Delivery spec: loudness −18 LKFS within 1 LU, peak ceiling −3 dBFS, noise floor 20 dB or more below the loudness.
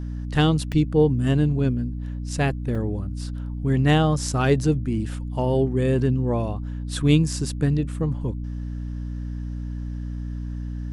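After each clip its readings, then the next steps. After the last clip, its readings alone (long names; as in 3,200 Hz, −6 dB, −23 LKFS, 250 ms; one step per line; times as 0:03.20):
number of dropouts 2; longest dropout 3.7 ms; mains hum 60 Hz; hum harmonics up to 300 Hz; level of the hum −27 dBFS; integrated loudness −24.0 LKFS; sample peak −6.5 dBFS; target loudness −18.0 LKFS
→ repair the gap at 0:00.72/0:02.75, 3.7 ms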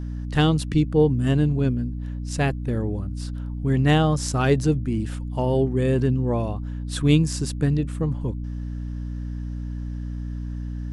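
number of dropouts 0; mains hum 60 Hz; hum harmonics up to 300 Hz; level of the hum −27 dBFS
→ mains-hum notches 60/120/180/240/300 Hz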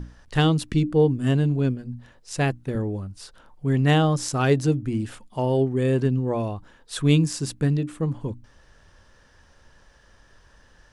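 mains hum none found; integrated loudness −23.5 LKFS; sample peak −7.0 dBFS; target loudness −18.0 LKFS
→ level +5.5 dB
brickwall limiter −3 dBFS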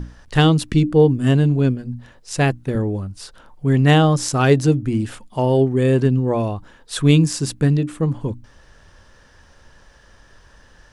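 integrated loudness −18.0 LKFS; sample peak −3.0 dBFS; background noise floor −51 dBFS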